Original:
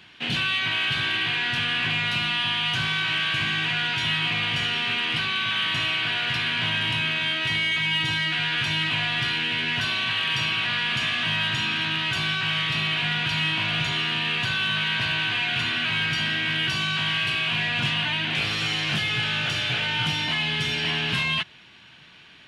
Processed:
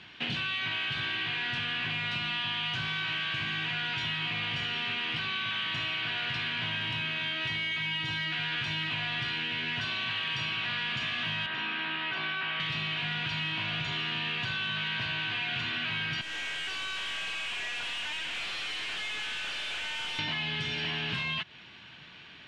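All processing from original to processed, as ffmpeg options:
-filter_complex "[0:a]asettb=1/sr,asplit=3[a][b][c];[a]atrim=end=11.464[d];[b]atrim=start=11.46:end=12.6,asetpts=PTS-STARTPTS,afade=t=in:d=0.004:c=qsin,afade=t=out:st=1.136:d=0.004:c=qsin,lowpass=f=5.8k:w=0.5412,lowpass=f=5.8k:w=1.3066,acrossover=split=220 2900:gain=0.0708 1 0.224[e][f][g];[e][f][g]amix=inputs=3:normalize=0[h];[c]atrim=start=12.596[i];[d][h]acrossfade=d=0.004:c1=hsin:c2=qsin[j];[j][i]acrossfade=d=0.004:c1=qsin:c2=hsin,asettb=1/sr,asplit=3[k][l][m];[k]atrim=end=16.214[n];[l]atrim=start=16.21:end=20.19,asetpts=PTS-STARTPTS,afade=t=in:d=0.004:c=qsin,afade=t=out:st=3.976:d=0.004:c=qsin,highpass=680,lowpass=6.6k,aeval=exprs='(tanh(44.7*val(0)+0.35)-tanh(0.35))/44.7':c=same[o];[m]atrim=start=20.186[p];[n][o]acrossfade=d=0.004:c1=hsin:c2=qsin[q];[q][p]acrossfade=d=0.004:c1=qsin:c2=hsin,acompressor=threshold=-30dB:ratio=6,lowpass=5.4k"

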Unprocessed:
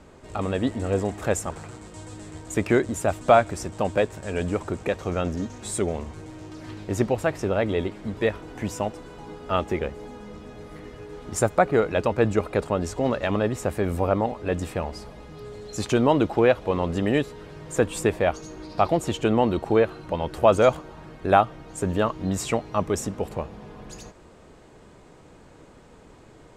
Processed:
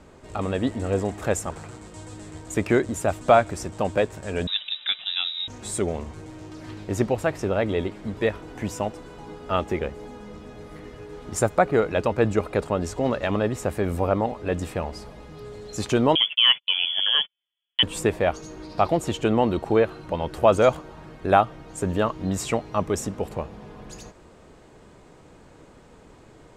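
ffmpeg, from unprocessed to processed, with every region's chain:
-filter_complex "[0:a]asettb=1/sr,asplit=3[a][b][c];[a]atrim=end=4.474[d];[b]atrim=start=4.47:end=5.48,asetpts=PTS-STARTPTS,afade=t=in:d=0.004:c=qsin,afade=t=out:st=1.006:d=0.004:c=qsin,highpass=f=170:p=1,lowpass=f=3.4k:t=q:w=0.5098,lowpass=f=3.4k:t=q:w=0.6013,lowpass=f=3.4k:t=q:w=0.9,lowpass=f=3.4k:t=q:w=2.563,afreqshift=-4000[e];[c]atrim=start=5.476[f];[d][e]acrossfade=d=0.004:c1=hsin:c2=qsin[g];[g][f]acrossfade=d=0.004:c1=qsin:c2=hsin,asettb=1/sr,asplit=3[h][i][j];[h]atrim=end=16.154[k];[i]atrim=start=16.15:end=17.83,asetpts=PTS-STARTPTS,afade=t=in:d=0.004:c=qsin,afade=t=out:st=1.676:d=0.004:c=qsin,lowpass=f=3k:t=q:w=0.5098,lowpass=f=3k:t=q:w=0.6013,lowpass=f=3k:t=q:w=0.9,lowpass=f=3k:t=q:w=2.563,afreqshift=-3500,agate=range=-45dB:threshold=-32dB:ratio=16:release=100:detection=peak[l];[j]atrim=start=17.826[m];[k][l]acrossfade=d=0.004:c1=hsin:c2=qsin[n];[n][m]acrossfade=d=0.004:c1=qsin:c2=hsin"

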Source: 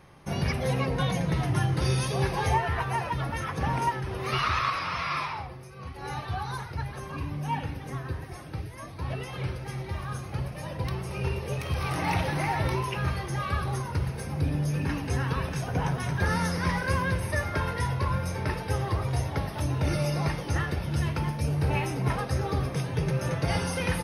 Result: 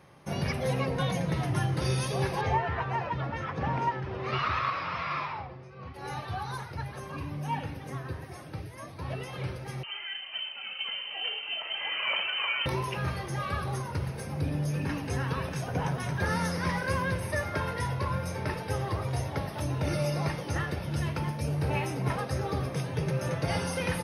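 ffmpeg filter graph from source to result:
-filter_complex "[0:a]asettb=1/sr,asplit=3[a][b][c];[a]atrim=end=2.414[d];[b]atrim=start=2.41:end=5.94,asetpts=PTS-STARTPTS,afade=t=in:d=0.004:c=qsin,afade=t=out:st=3.526:d=0.004:c=qsin,lowpass=5.7k,aemphasis=mode=reproduction:type=50fm[e];[c]atrim=start=5.936[f];[d][e]acrossfade=d=0.004:c1=hsin:c2=qsin[g];[g][f]acrossfade=d=0.004:c1=qsin:c2=hsin,asettb=1/sr,asplit=3[h][i][j];[h]atrim=end=9.834[k];[i]atrim=start=9.83:end=12.66,asetpts=PTS-STARTPTS,afade=t=in:d=0.004:c=qsin,afade=t=out:st=2.826:d=0.004:c=qsin,highpass=120,lowpass=f=2.7k:t=q:w=0.5098,lowpass=f=2.7k:t=q:w=0.6013,lowpass=f=2.7k:t=q:w=0.9,lowpass=f=2.7k:t=q:w=2.563,afreqshift=-3200[l];[j]atrim=start=12.656[m];[k][l]acrossfade=d=0.004:c1=hsin:c2=qsin[n];[n][m]acrossfade=d=0.004:c1=qsin:c2=hsin,highpass=85,equalizer=f=570:w=4.3:g=3,acontrast=26,volume=-7dB"

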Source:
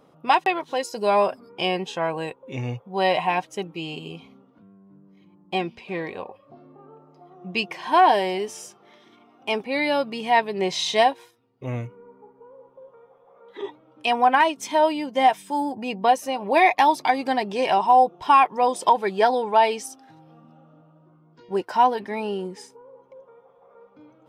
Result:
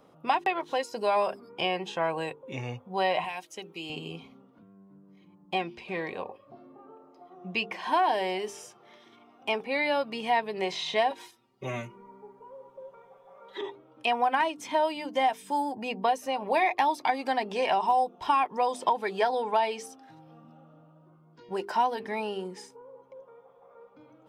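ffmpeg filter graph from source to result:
-filter_complex "[0:a]asettb=1/sr,asplit=3[a][b][c];[a]atrim=end=3.244[d];[b]atrim=start=3.24:end=3.9,asetpts=PTS-STARTPTS,afade=t=in:d=0.004:c=qsin,afade=t=out:st=0.656:d=0.004:c=qsin,highpass=200,highshelf=f=9.4k:g=11.5,acrossover=split=2100|7600[e][f][g];[e]acompressor=threshold=-37dB:ratio=4[h];[f]acompressor=threshold=-38dB:ratio=4[i];[g]acompressor=threshold=-58dB:ratio=4[j];[h][i][j]amix=inputs=3:normalize=0[k];[c]atrim=start=3.896[l];[d][k]acrossfade=d=0.004:c1=hsin:c2=qsin[m];[m][l]acrossfade=d=0.004:c1=qsin:c2=hsin,asettb=1/sr,asplit=3[n][o][p];[n]atrim=end=11.104[q];[o]atrim=start=11.1:end=13.61,asetpts=PTS-STARTPTS,afade=t=in:d=0.004:c=qsin,afade=t=out:st=2.506:d=0.004:c=qsin,equalizer=f=5.6k:t=o:w=2.5:g=6,aecho=1:1:5.2:0.96,atrim=end_sample=110691[r];[p]atrim=start=13.606[s];[q][r]acrossfade=d=0.004:c1=hsin:c2=qsin[t];[t][s]acrossfade=d=0.004:c1=qsin:c2=hsin,bandreject=f=50:t=h:w=6,bandreject=f=100:t=h:w=6,bandreject=f=150:t=h:w=6,bandreject=f=200:t=h:w=6,bandreject=f=250:t=h:w=6,bandreject=f=300:t=h:w=6,bandreject=f=350:t=h:w=6,bandreject=f=400:t=h:w=6,bandreject=f=450:t=h:w=6,acrossover=split=490|3300[u][v][w];[u]acompressor=threshold=-35dB:ratio=4[x];[v]acompressor=threshold=-22dB:ratio=4[y];[w]acompressor=threshold=-44dB:ratio=4[z];[x][y][z]amix=inputs=3:normalize=0,volume=-1.5dB"

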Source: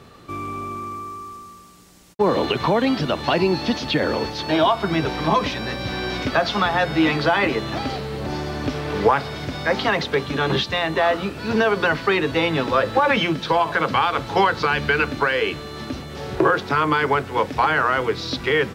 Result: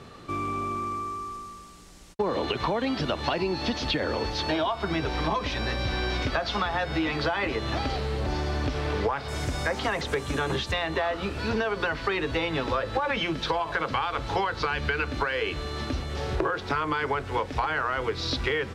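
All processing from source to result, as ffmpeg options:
-filter_complex "[0:a]asettb=1/sr,asplit=3[a][b][c];[a]atrim=end=9.284[d];[b]atrim=start=9.28:end=10.72,asetpts=PTS-STARTPTS,afade=t=in:d=0.004:c=qsin,afade=t=out:st=1.436:d=0.004:c=qsin,acrossover=split=4500[e][f];[f]acompressor=threshold=-40dB:ratio=4:attack=1:release=60[g];[e][g]amix=inputs=2:normalize=0,highshelf=f=5.8k:t=q:w=1.5:g=10.5[h];[c]atrim=start=10.716[i];[d][h]acrossfade=d=0.004:c1=hsin:c2=qsin[j];[j][i]acrossfade=d=0.004:c1=qsin:c2=hsin,lowpass=9.8k,asubboost=boost=6.5:cutoff=61,acompressor=threshold=-24dB:ratio=6"

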